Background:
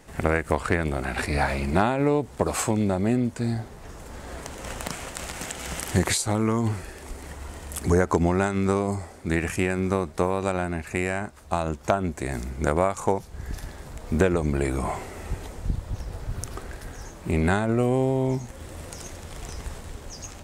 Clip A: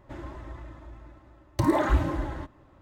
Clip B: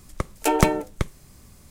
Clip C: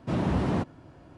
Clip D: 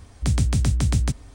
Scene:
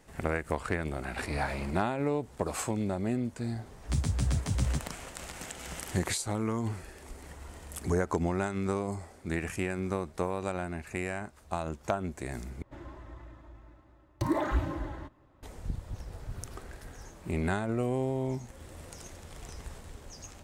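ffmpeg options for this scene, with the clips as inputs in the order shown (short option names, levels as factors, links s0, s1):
-filter_complex "[0:a]volume=0.398[s0];[3:a]highpass=490[s1];[4:a]asplit=2[s2][s3];[s3]adelay=9.7,afreqshift=2.6[s4];[s2][s4]amix=inputs=2:normalize=1[s5];[s0]asplit=2[s6][s7];[s6]atrim=end=12.624[s8];[1:a]atrim=end=2.81,asetpts=PTS-STARTPTS,volume=0.501[s9];[s7]atrim=start=15.426[s10];[s1]atrim=end=1.17,asetpts=PTS-STARTPTS,volume=0.224,afade=t=in:d=0.004:c=hsin,afade=t=out:st=1.166:d=0.004:c=hsin,adelay=1080[s11];[s5]atrim=end=1.34,asetpts=PTS-STARTPTS,volume=0.531,afade=t=in:d=0.004:c=hsin,afade=t=out:st=1.336:d=0.004:c=hsin,adelay=3660[s12];[s8][s9]acrossfade=d=0.004:c1=hsin:c2=hsin[s13];[s13][s10]acrossfade=d=0.004:c1=hsin:c2=hsin[s14];[s14][s11][s12]amix=inputs=3:normalize=0"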